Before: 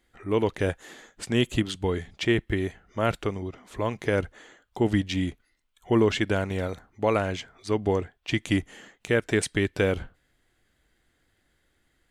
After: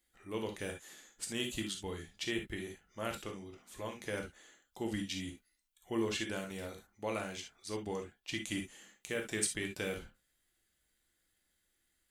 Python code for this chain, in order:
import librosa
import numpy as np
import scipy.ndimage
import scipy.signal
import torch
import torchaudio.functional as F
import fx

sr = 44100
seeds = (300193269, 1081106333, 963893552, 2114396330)

y = librosa.effects.preemphasis(x, coef=0.8, zi=[0.0])
y = fx.rev_gated(y, sr, seeds[0], gate_ms=90, shape='flat', drr_db=2.5)
y = y * 10.0 ** (-2.5 / 20.0)